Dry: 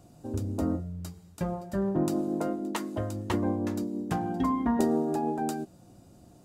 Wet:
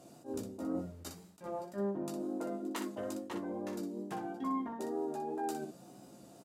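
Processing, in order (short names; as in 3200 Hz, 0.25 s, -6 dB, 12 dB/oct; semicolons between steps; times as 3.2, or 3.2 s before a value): HPF 230 Hz 12 dB/oct; reverse; compressor 6:1, threshold -39 dBFS, peak gain reduction 16.5 dB; reverse; wow and flutter 38 cents; on a send: early reflections 15 ms -5 dB, 60 ms -7.5 dB; on the sum: attack slew limiter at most 260 dB/s; gain +1.5 dB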